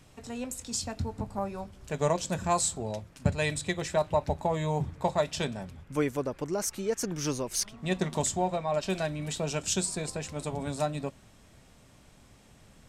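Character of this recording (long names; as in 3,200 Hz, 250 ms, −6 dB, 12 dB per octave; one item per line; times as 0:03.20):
background noise floor −57 dBFS
spectral slope −4.0 dB per octave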